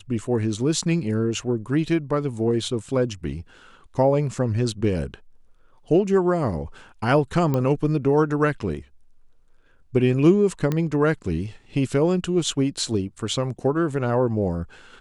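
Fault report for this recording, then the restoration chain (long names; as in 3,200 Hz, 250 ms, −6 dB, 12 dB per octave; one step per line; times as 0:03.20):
0:07.54: click −12 dBFS
0:10.72: click −12 dBFS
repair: click removal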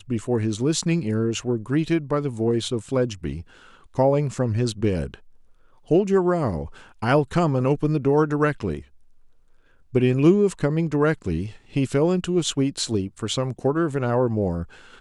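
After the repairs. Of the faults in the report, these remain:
none of them is left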